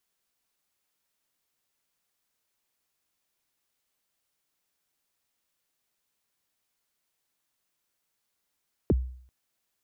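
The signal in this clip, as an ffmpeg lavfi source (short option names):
-f lavfi -i "aevalsrc='0.15*pow(10,-3*t/0.57)*sin(2*PI*(500*0.032/log(63/500)*(exp(log(63/500)*min(t,0.032)/0.032)-1)+63*max(t-0.032,0)))':d=0.39:s=44100"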